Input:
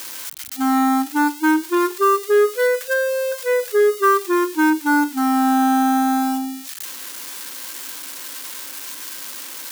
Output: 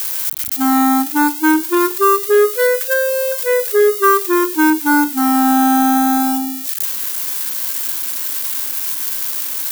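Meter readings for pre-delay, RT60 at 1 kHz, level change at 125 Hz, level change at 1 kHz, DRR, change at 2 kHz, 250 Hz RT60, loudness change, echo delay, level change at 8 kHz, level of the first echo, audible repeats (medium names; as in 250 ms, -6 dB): no reverb, no reverb, no reading, +3.0 dB, no reverb, +3.0 dB, no reverb, +5.0 dB, no echo, +7.5 dB, no echo, no echo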